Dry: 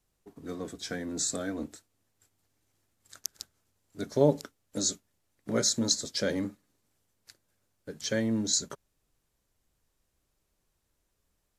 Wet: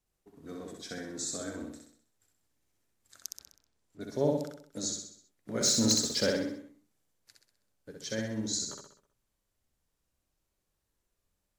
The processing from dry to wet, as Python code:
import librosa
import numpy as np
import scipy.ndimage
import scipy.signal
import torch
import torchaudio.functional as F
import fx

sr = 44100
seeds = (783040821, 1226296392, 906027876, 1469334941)

p1 = fx.env_lowpass_down(x, sr, base_hz=2200.0, full_db=-48.0, at=(3.38, 4.0), fade=0.02)
p2 = fx.leveller(p1, sr, passes=2, at=(5.61, 6.3))
p3 = p2 + fx.echo_feedback(p2, sr, ms=64, feedback_pct=49, wet_db=-3.0, dry=0)
y = p3 * 10.0 ** (-6.5 / 20.0)